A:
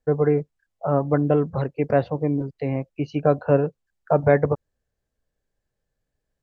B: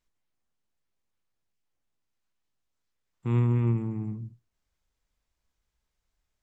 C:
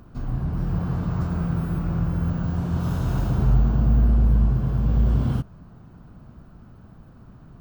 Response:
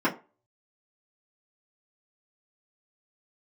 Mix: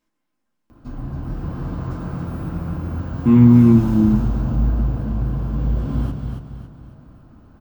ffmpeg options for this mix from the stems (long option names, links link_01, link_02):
-filter_complex "[1:a]asubboost=boost=7:cutoff=180,volume=1.5dB,asplit=2[link_01][link_02];[link_02]volume=-7.5dB[link_03];[2:a]adelay=700,volume=-2.5dB,asplit=3[link_04][link_05][link_06];[link_05]volume=-20dB[link_07];[link_06]volume=-4dB[link_08];[3:a]atrim=start_sample=2205[link_09];[link_03][link_07]amix=inputs=2:normalize=0[link_10];[link_10][link_09]afir=irnorm=-1:irlink=0[link_11];[link_08]aecho=0:1:277|554|831|1108|1385|1662:1|0.41|0.168|0.0689|0.0283|0.0116[link_12];[link_01][link_04][link_11][link_12]amix=inputs=4:normalize=0"